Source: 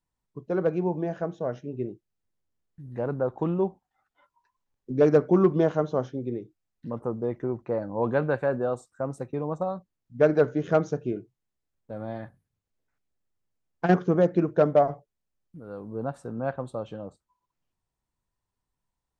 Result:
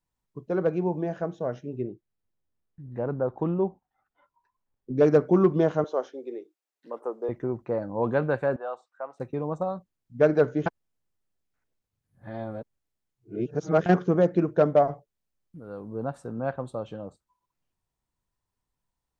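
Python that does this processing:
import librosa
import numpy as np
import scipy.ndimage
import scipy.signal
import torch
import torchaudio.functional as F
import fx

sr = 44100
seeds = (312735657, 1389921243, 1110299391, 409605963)

y = fx.high_shelf(x, sr, hz=fx.line((1.81, 3700.0), (4.96, 2500.0)), db=-11.0, at=(1.81, 4.96), fade=0.02)
y = fx.highpass(y, sr, hz=360.0, slope=24, at=(5.84, 7.29))
y = fx.cheby1_bandpass(y, sr, low_hz=740.0, high_hz=3100.0, order=2, at=(8.56, 9.2))
y = fx.edit(y, sr, fx.reverse_span(start_s=10.66, length_s=3.2), tone=tone)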